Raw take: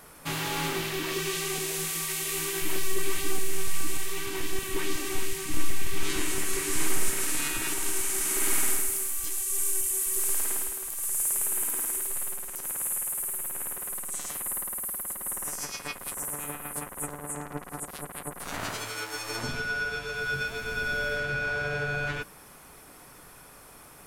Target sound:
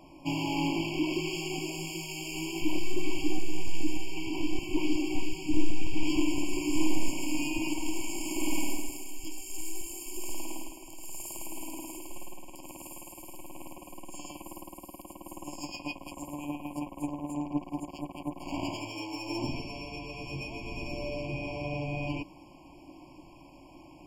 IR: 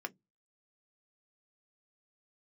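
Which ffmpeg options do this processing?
-af "superequalizer=6b=3.16:7b=0.316:16b=0.398,adynamicsmooth=sensitivity=5.5:basefreq=5500,afftfilt=real='re*eq(mod(floor(b*sr/1024/1100),2),0)':imag='im*eq(mod(floor(b*sr/1024/1100),2),0)':win_size=1024:overlap=0.75"

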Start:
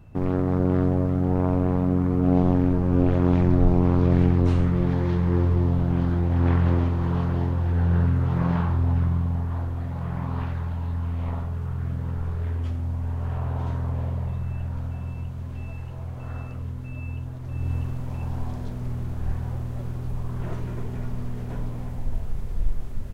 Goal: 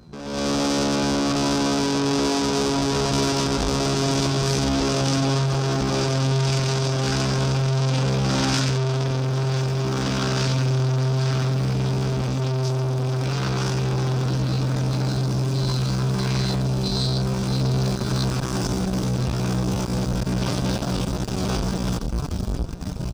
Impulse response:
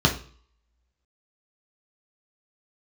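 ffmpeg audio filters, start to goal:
-filter_complex "[0:a]asplit=2[link_01][link_02];[link_02]adelay=27,volume=-7dB[link_03];[link_01][link_03]amix=inputs=2:normalize=0,asplit=2[link_04][link_05];[link_05]acompressor=threshold=-28dB:ratio=6,volume=2dB[link_06];[link_04][link_06]amix=inputs=2:normalize=0,aeval=exprs='(tanh(35.5*val(0)+0.6)-tanh(0.6))/35.5':channel_layout=same,dynaudnorm=framelen=240:gausssize=3:maxgain=14.5dB,superequalizer=10b=0.562:12b=1.58:13b=3.16:14b=2:16b=0.316,aecho=1:1:1025:0.2,asetrate=68011,aresample=44100,atempo=0.64842,highpass=43,adynamicequalizer=threshold=0.01:dfrequency=2900:dqfactor=0.7:tfrequency=2900:tqfactor=0.7:attack=5:release=100:ratio=0.375:range=3.5:mode=boostabove:tftype=highshelf,volume=-4dB"

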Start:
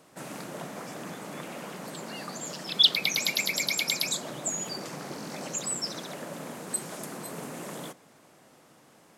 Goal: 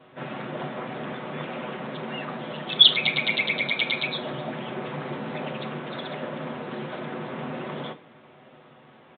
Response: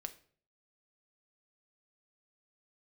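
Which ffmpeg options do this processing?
-filter_complex "[0:a]asplit=2[link_01][link_02];[1:a]atrim=start_sample=2205,adelay=8[link_03];[link_02][link_03]afir=irnorm=-1:irlink=0,volume=8dB[link_04];[link_01][link_04]amix=inputs=2:normalize=0,aresample=8000,aresample=44100"

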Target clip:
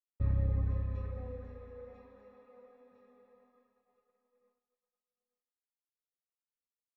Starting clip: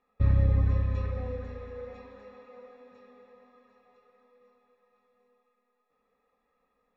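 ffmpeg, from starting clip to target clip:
ffmpeg -i in.wav -af "agate=range=-33dB:threshold=-57dB:ratio=3:detection=peak,highshelf=frequency=2100:gain=-10,volume=-7.5dB" out.wav

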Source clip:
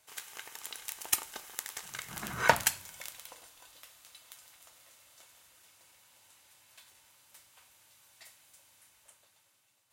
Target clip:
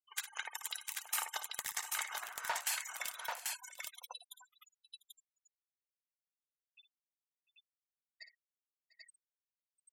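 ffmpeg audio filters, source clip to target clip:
ffmpeg -i in.wav -af "afftfilt=real='re*gte(hypot(re,im),0.00631)':imag='im*gte(hypot(re,im),0.00631)':win_size=1024:overlap=0.75,highpass=frequency=650:width=0.5412,highpass=frequency=650:width=1.3066,areverse,acompressor=threshold=-43dB:ratio=16,areverse,asoftclip=type=tanh:threshold=-31.5dB,aecho=1:1:57|697|788:0.282|0.126|0.668,volume=9dB" out.wav

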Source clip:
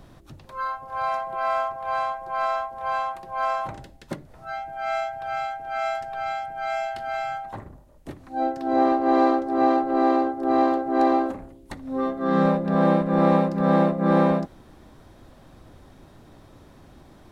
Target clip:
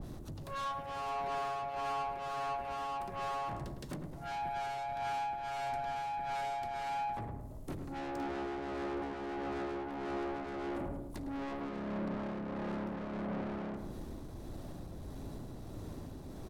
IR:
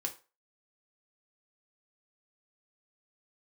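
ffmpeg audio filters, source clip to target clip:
-filter_complex "[0:a]equalizer=frequency=1600:width=0.47:gain=-10,acompressor=threshold=-25dB:ratio=6,alimiter=level_in=1.5dB:limit=-24dB:level=0:latency=1:release=111,volume=-1.5dB,acontrast=85,asoftclip=type=tanh:threshold=-36.5dB,tremolo=f=1.5:d=0.33,asetrate=46305,aresample=44100,asplit=2[link_01][link_02];[link_02]adelay=106,lowpass=frequency=1400:poles=1,volume=-5.5dB,asplit=2[link_03][link_04];[link_04]adelay=106,lowpass=frequency=1400:poles=1,volume=0.49,asplit=2[link_05][link_06];[link_06]adelay=106,lowpass=frequency=1400:poles=1,volume=0.49,asplit=2[link_07][link_08];[link_08]adelay=106,lowpass=frequency=1400:poles=1,volume=0.49,asplit=2[link_09][link_10];[link_10]adelay=106,lowpass=frequency=1400:poles=1,volume=0.49,asplit=2[link_11][link_12];[link_12]adelay=106,lowpass=frequency=1400:poles=1,volume=0.49[link_13];[link_01][link_03][link_05][link_07][link_09][link_11][link_13]amix=inputs=7:normalize=0,adynamicequalizer=threshold=0.002:dfrequency=2500:dqfactor=0.7:tfrequency=2500:tqfactor=0.7:attack=5:release=100:ratio=0.375:range=2:mode=cutabove:tftype=highshelf"

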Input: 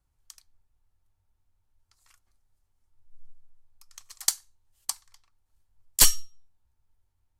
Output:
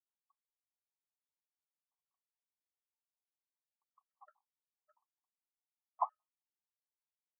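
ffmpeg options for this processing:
ffmpeg -i in.wav -af "afftdn=noise_reduction=22:noise_floor=-48,asuperpass=centerf=860:order=8:qfactor=1.9,afftfilt=real='re*gt(sin(2*PI*4.9*pts/sr)*(1-2*mod(floor(b*sr/1024/640),2)),0)':imag='im*gt(sin(2*PI*4.9*pts/sr)*(1-2*mod(floor(b*sr/1024/640),2)),0)':win_size=1024:overlap=0.75,volume=4dB" out.wav

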